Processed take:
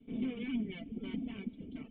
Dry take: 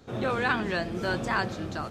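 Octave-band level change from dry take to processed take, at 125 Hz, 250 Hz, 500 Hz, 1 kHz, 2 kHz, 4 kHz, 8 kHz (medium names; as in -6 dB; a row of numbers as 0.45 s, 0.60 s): -13.0 dB, -3.5 dB, -18.0 dB, -30.5 dB, -22.5 dB, -14.5 dB, under -30 dB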